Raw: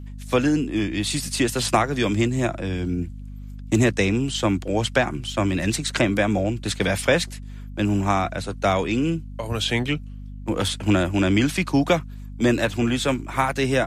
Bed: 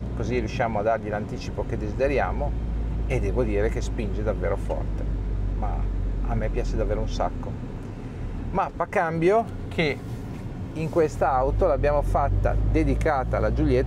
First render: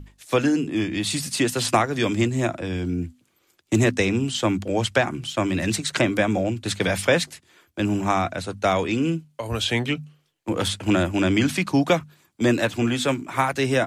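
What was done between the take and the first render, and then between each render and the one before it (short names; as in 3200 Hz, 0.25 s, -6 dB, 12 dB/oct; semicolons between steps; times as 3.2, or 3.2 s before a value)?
notches 50/100/150/200/250 Hz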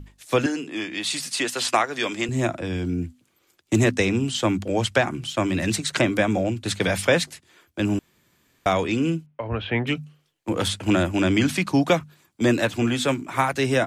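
0.46–2.29 weighting filter A; 7.99–8.66 room tone; 9.26–9.87 LPF 2500 Hz 24 dB/oct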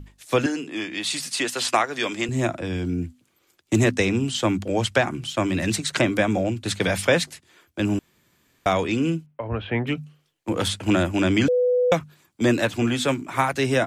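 9.33–9.98 bell 5800 Hz -7 dB 2.3 oct; 11.48–11.92 bleep 496 Hz -16.5 dBFS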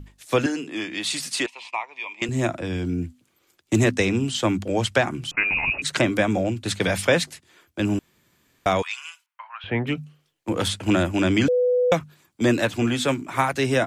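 1.46–2.22 double band-pass 1500 Hz, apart 1.3 oct; 5.31–5.82 inverted band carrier 2700 Hz; 8.82–9.64 steep high-pass 920 Hz 48 dB/oct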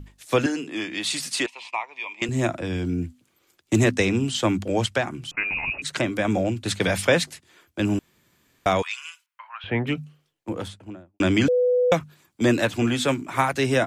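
4.86–6.25 gain -4 dB; 8.89–9.48 bell 730 Hz -8 dB 0.75 oct; 9.99–11.2 studio fade out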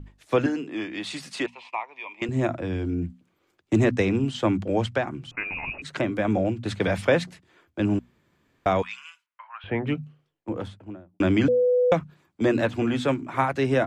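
LPF 1500 Hz 6 dB/oct; notches 60/120/180/240 Hz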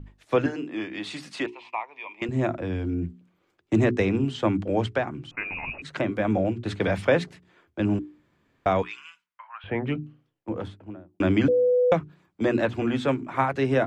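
high shelf 5400 Hz -8 dB; notches 60/120/180/240/300/360/420 Hz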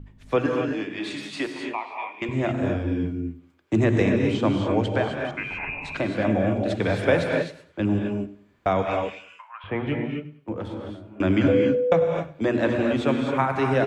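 feedback echo 98 ms, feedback 34%, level -18 dB; non-linear reverb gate 0.29 s rising, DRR 2 dB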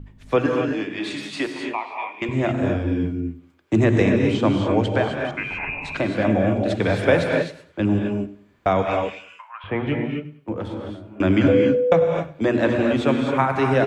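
gain +3 dB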